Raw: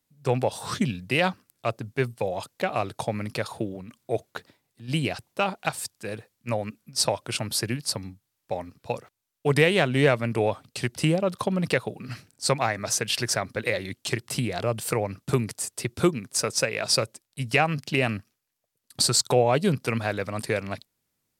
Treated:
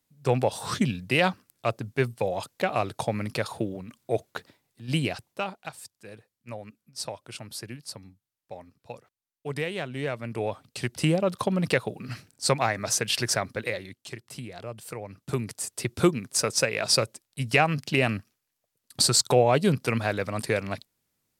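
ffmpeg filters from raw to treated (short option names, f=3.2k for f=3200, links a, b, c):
-af "volume=23.5dB,afade=t=out:st=4.92:d=0.71:silence=0.266073,afade=t=in:st=10.06:d=1.15:silence=0.281838,afade=t=out:st=13.41:d=0.57:silence=0.266073,afade=t=in:st=15.01:d=0.92:silence=0.251189"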